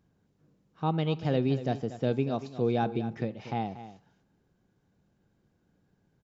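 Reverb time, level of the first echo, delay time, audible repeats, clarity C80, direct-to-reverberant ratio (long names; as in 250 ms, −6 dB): no reverb audible, −13.5 dB, 236 ms, 1, no reverb audible, no reverb audible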